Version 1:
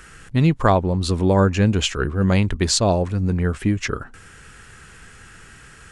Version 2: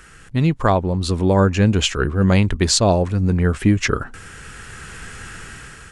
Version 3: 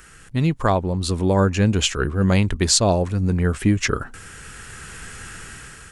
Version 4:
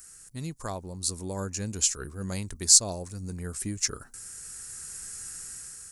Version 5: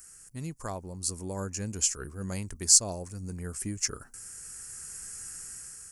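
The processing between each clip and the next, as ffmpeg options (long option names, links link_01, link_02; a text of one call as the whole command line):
ffmpeg -i in.wav -af "dynaudnorm=framelen=310:gausssize=5:maxgain=10.5dB,volume=-1dB" out.wav
ffmpeg -i in.wav -af "highshelf=frequency=8200:gain=9,volume=-2.5dB" out.wav
ffmpeg -i in.wav -af "aexciter=amount=11:drive=2.3:freq=4600,volume=-16.5dB" out.wav
ffmpeg -i in.wav -af "equalizer=frequency=3800:width_type=o:width=0.3:gain=-10.5,volume=-1.5dB" out.wav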